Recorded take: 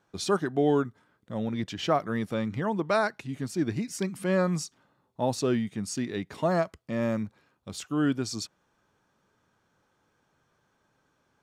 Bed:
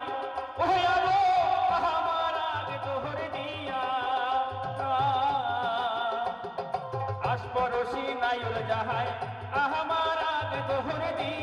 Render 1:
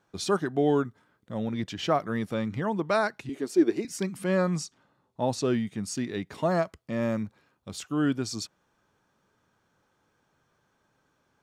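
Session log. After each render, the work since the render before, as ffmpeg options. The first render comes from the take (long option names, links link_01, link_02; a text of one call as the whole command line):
ffmpeg -i in.wav -filter_complex "[0:a]asettb=1/sr,asplit=3[link_01][link_02][link_03];[link_01]atrim=end=3.294[link_04];[link_02]atrim=start=3.29:end=3.85,asetpts=PTS-STARTPTS,afade=type=in:duration=0.004:curve=qsin,afade=type=out:start_time=0.556:duration=0.004:curve=qsin,highpass=frequency=370:width_type=q:width=3.6[link_05];[link_03]atrim=start=3.846[link_06];[link_04][link_05]acrossfade=duration=0.004:curve1=hsin:curve2=qsin[link_07];[link_07][link_06]acrossfade=duration=0.004:curve1=qsin:curve2=hsin,asettb=1/sr,asplit=3[link_08][link_09][link_10];[link_08]atrim=end=4.484[link_11];[link_09]atrim=start=4.48:end=5.45,asetpts=PTS-STARTPTS,afade=type=in:duration=0.004:curve=qsin,afade=type=out:start_time=0.966:duration=0.004:curve=qsin,lowpass=9900[link_12];[link_10]atrim=start=5.446[link_13];[link_11][link_12]acrossfade=duration=0.004:curve1=hsin:curve2=qsin[link_14];[link_14][link_13]acrossfade=duration=0.004:curve1=qsin:curve2=hsin" out.wav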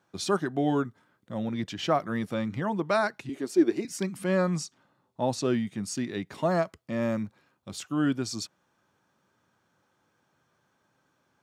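ffmpeg -i in.wav -af "highpass=88,bandreject=frequency=440:width=12" out.wav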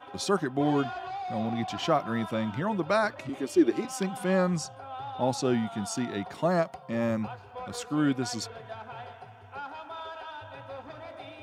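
ffmpeg -i in.wav -i bed.wav -filter_complex "[1:a]volume=-12.5dB[link_01];[0:a][link_01]amix=inputs=2:normalize=0" out.wav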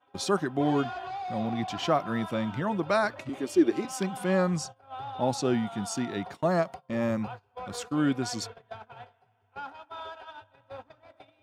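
ffmpeg -i in.wav -af "agate=range=-20dB:threshold=-40dB:ratio=16:detection=peak" out.wav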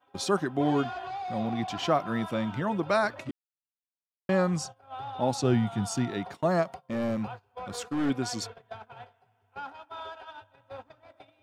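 ffmpeg -i in.wav -filter_complex "[0:a]asettb=1/sr,asplit=3[link_01][link_02][link_03];[link_01]atrim=end=5.434[link_04];[link_02]atrim=start=5.43:end=6.1,asetpts=PTS-STARTPTS,afade=type=in:duration=0.004:curve=qsin,afade=type=out:start_time=0.666:duration=0.004:curve=qsin,equalizer=frequency=110:width_type=o:width=1:gain=10[link_05];[link_03]atrim=start=6.096[link_06];[link_04][link_05]acrossfade=duration=0.004:curve1=hsin:curve2=qsin[link_07];[link_07][link_06]acrossfade=duration=0.004:curve1=qsin:curve2=hsin,asettb=1/sr,asplit=3[link_08][link_09][link_10];[link_08]atrim=end=6.804[link_11];[link_09]atrim=start=6.8:end=8.1,asetpts=PTS-STARTPTS,afade=type=in:duration=0.004:curve=qsin,afade=type=out:start_time=1.296:duration=0.004:curve=qsin,aeval=exprs='clip(val(0),-1,0.0447)':channel_layout=same[link_12];[link_10]atrim=start=8.096[link_13];[link_11][link_12]acrossfade=duration=0.004:curve1=hsin:curve2=qsin[link_14];[link_14][link_13]acrossfade=duration=0.004:curve1=qsin:curve2=hsin,asplit=3[link_15][link_16][link_17];[link_15]atrim=end=3.31,asetpts=PTS-STARTPTS,afade=type=out:start_time=3.306:duration=0.004:curve=hsin[link_18];[link_16]atrim=start=3.31:end=4.29,asetpts=PTS-STARTPTS,volume=0[link_19];[link_17]atrim=start=4.29,asetpts=PTS-STARTPTS,afade=type=in:duration=0.004:curve=hsin[link_20];[link_18][link_19][link_20]concat=n=3:v=0:a=1" out.wav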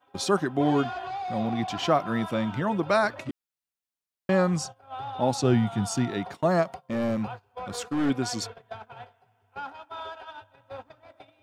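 ffmpeg -i in.wav -af "volume=2.5dB" out.wav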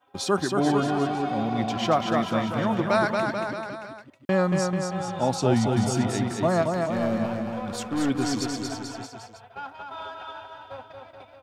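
ffmpeg -i in.wav -af "aecho=1:1:230|437|623.3|791|941.9:0.631|0.398|0.251|0.158|0.1" out.wav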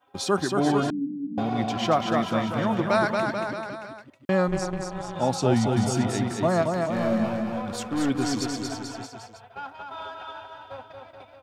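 ffmpeg -i in.wav -filter_complex "[0:a]asettb=1/sr,asplit=3[link_01][link_02][link_03];[link_01]atrim=end=0.904[link_04];[link_02]atrim=start=0.9:end=1.38,asetpts=PTS-STARTPTS,afade=type=in:duration=0.004:curve=qsin,afade=type=out:start_time=0.476:duration=0.004:curve=qsin,asuperpass=centerf=230:order=8:qfactor=1.7[link_05];[link_03]atrim=start=1.376[link_06];[link_04][link_05]acrossfade=duration=0.004:curve1=hsin:curve2=qsin[link_07];[link_07][link_06]acrossfade=duration=0.004:curve1=qsin:curve2=hsin,asettb=1/sr,asplit=3[link_08][link_09][link_10];[link_08]atrim=end=4.484[link_11];[link_09]atrim=start=4.48:end=5.16,asetpts=PTS-STARTPTS,afade=type=in:duration=0.004:curve=qsin,afade=type=out:start_time=0.676:duration=0.004:curve=qsin,tremolo=f=200:d=0.889[link_12];[link_10]atrim=start=5.156[link_13];[link_11][link_12]acrossfade=duration=0.004:curve1=hsin:curve2=qsin[link_14];[link_14][link_13]acrossfade=duration=0.004:curve1=qsin:curve2=hsin,asettb=1/sr,asplit=3[link_15][link_16][link_17];[link_15]atrim=end=6.944[link_18];[link_16]atrim=start=6.94:end=7.62,asetpts=PTS-STARTPTS,afade=type=in:duration=0.004:curve=qsin,afade=type=out:start_time=0.676:duration=0.004:curve=qsin,asplit=2[link_19][link_20];[link_20]adelay=23,volume=-4.5dB[link_21];[link_19][link_21]amix=inputs=2:normalize=0,atrim=end_sample=29988[link_22];[link_17]atrim=start=7.616[link_23];[link_18][link_22]acrossfade=duration=0.004:curve1=hsin:curve2=qsin[link_24];[link_24][link_23]acrossfade=duration=0.004:curve1=qsin:curve2=hsin" out.wav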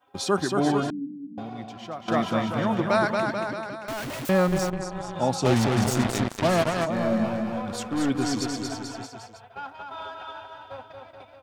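ffmpeg -i in.wav -filter_complex "[0:a]asettb=1/sr,asplit=3[link_01][link_02][link_03];[link_01]atrim=end=3.884[link_04];[link_02]atrim=start=3.88:end=4.7,asetpts=PTS-STARTPTS,afade=type=in:duration=0.004:curve=qsin,afade=type=out:start_time=0.816:duration=0.004:curve=qsin,aeval=exprs='val(0)+0.5*0.0398*sgn(val(0))':channel_layout=same[link_05];[link_03]atrim=start=4.696[link_06];[link_04][link_05]acrossfade=duration=0.004:curve1=hsin:curve2=qsin[link_07];[link_07][link_06]acrossfade=duration=0.004:curve1=qsin:curve2=hsin,asplit=3[link_08][link_09][link_10];[link_08]afade=type=out:start_time=5.44:duration=0.02[link_11];[link_09]acrusher=bits=3:mix=0:aa=0.5,afade=type=in:start_time=5.44:duration=0.02,afade=type=out:start_time=6.84:duration=0.02[link_12];[link_10]afade=type=in:start_time=6.84:duration=0.02[link_13];[link_11][link_12][link_13]amix=inputs=3:normalize=0,asplit=2[link_14][link_15];[link_14]atrim=end=2.08,asetpts=PTS-STARTPTS,afade=type=out:start_time=0.65:duration=1.43:curve=qua:silence=0.188365[link_16];[link_15]atrim=start=2.08,asetpts=PTS-STARTPTS,afade=type=in:duration=0.004:curve=hsin:silence=0.188365[link_17];[link_16][link_17]concat=n=2:v=0:a=1" out.wav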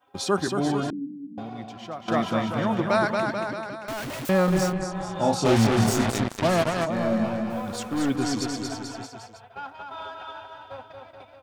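ffmpeg -i in.wav -filter_complex "[0:a]asettb=1/sr,asplit=3[link_01][link_02][link_03];[link_01]atrim=end=0.474[link_04];[link_02]atrim=start=0.47:end=0.93,asetpts=PTS-STARTPTS,afade=type=in:duration=0.004:curve=qsin,afade=type=out:start_time=0.456:duration=0.004:curve=qsin,acrossover=split=280|3000[link_05][link_06][link_07];[link_06]acompressor=threshold=-24dB:ratio=6:attack=3.2:release=140:knee=2.83:detection=peak[link_08];[link_05][link_08][link_07]amix=inputs=3:normalize=0[link_09];[link_03]atrim=start=0.926[link_10];[link_04][link_09]acrossfade=duration=0.004:curve1=hsin:curve2=qsin[link_11];[link_11][link_10]acrossfade=duration=0.004:curve1=qsin:curve2=hsin,asettb=1/sr,asplit=3[link_12][link_13][link_14];[link_12]atrim=end=4.454[link_15];[link_13]atrim=start=4.45:end=6.11,asetpts=PTS-STARTPTS,afade=type=in:duration=0.004:curve=qsin,afade=type=out:start_time=1.656:duration=0.004:curve=qsin,asplit=2[link_16][link_17];[link_17]adelay=27,volume=-3dB[link_18];[link_16][link_18]amix=inputs=2:normalize=0,atrim=end_sample=73206[link_19];[link_14]atrim=start=6.106[link_20];[link_15][link_19]acrossfade=duration=0.004:curve1=hsin:curve2=qsin[link_21];[link_21][link_20]acrossfade=duration=0.004:curve1=qsin:curve2=hsin,asettb=1/sr,asplit=3[link_22][link_23][link_24];[link_22]atrim=end=7.504[link_25];[link_23]atrim=start=7.5:end=8.16,asetpts=PTS-STARTPTS,afade=type=in:duration=0.004:curve=qsin,afade=type=out:start_time=0.656:duration=0.004:curve=qsin,acrusher=bits=7:mix=0:aa=0.5[link_26];[link_24]atrim=start=8.156[link_27];[link_25][link_26]acrossfade=duration=0.004:curve1=hsin:curve2=qsin[link_28];[link_28][link_27]acrossfade=duration=0.004:curve1=qsin:curve2=hsin" out.wav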